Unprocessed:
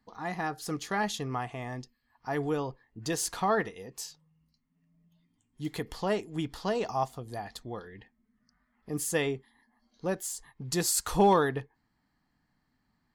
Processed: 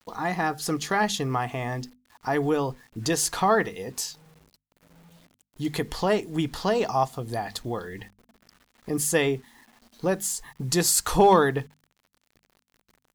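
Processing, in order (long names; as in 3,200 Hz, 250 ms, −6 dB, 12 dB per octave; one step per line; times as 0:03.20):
in parallel at +2 dB: downward compressor 6 to 1, threshold −42 dBFS, peak gain reduction 21.5 dB
on the sum: bit-depth reduction 10 bits, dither none
mains-hum notches 50/100/150/200/250 Hz
level +4.5 dB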